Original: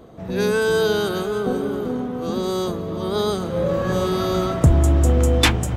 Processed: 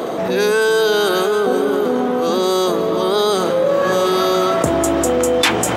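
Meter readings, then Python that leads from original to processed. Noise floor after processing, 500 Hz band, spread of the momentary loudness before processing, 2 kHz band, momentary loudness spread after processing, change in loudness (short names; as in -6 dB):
-19 dBFS, +7.0 dB, 9 LU, +6.0 dB, 3 LU, +4.5 dB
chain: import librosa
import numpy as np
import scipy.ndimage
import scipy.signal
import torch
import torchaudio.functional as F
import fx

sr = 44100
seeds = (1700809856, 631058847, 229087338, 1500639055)

y = scipy.signal.sosfilt(scipy.signal.butter(2, 360.0, 'highpass', fs=sr, output='sos'), x)
y = fx.env_flatten(y, sr, amount_pct=70)
y = F.gain(torch.from_numpy(y), 1.0).numpy()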